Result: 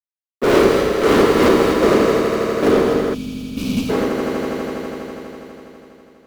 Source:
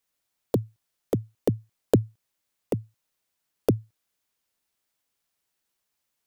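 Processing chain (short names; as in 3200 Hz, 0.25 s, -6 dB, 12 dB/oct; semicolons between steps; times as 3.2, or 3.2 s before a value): phase scrambler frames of 0.2 s; HPF 180 Hz 24 dB/oct; bell 400 Hz +11.5 dB 2.3 oct; 1.48–3.77 compressor 10:1, threshold -29 dBFS, peak gain reduction 21 dB; fuzz box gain 36 dB, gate -44 dBFS; high shelf 9400 Hz -5.5 dB; swelling echo 82 ms, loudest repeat 5, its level -12 dB; non-linear reverb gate 0.29 s flat, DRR 0.5 dB; 3.14–3.89 spectral gain 290–2200 Hz -21 dB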